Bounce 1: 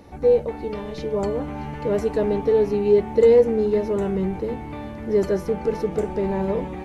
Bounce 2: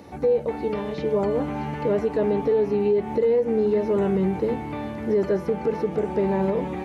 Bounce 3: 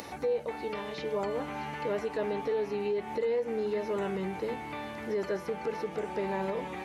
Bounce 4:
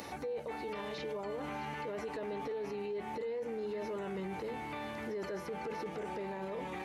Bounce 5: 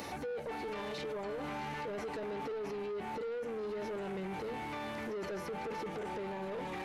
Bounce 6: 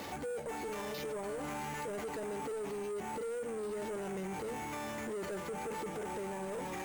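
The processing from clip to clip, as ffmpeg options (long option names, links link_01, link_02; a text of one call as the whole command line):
ffmpeg -i in.wav -filter_complex "[0:a]acrossover=split=3500[link_01][link_02];[link_02]acompressor=threshold=-57dB:ratio=4:attack=1:release=60[link_03];[link_01][link_03]amix=inputs=2:normalize=0,highpass=100,alimiter=limit=-17dB:level=0:latency=1:release=196,volume=3dB" out.wav
ffmpeg -i in.wav -af "tiltshelf=frequency=660:gain=-7.5,acompressor=mode=upward:threshold=-28dB:ratio=2.5,volume=-7dB" out.wav
ffmpeg -i in.wav -af "alimiter=level_in=7dB:limit=-24dB:level=0:latency=1:release=12,volume=-7dB,volume=-1.5dB" out.wav
ffmpeg -i in.wav -af "asoftclip=type=tanh:threshold=-39.5dB,volume=4dB" out.wav
ffmpeg -i in.wav -af "acrusher=samples=5:mix=1:aa=0.000001" out.wav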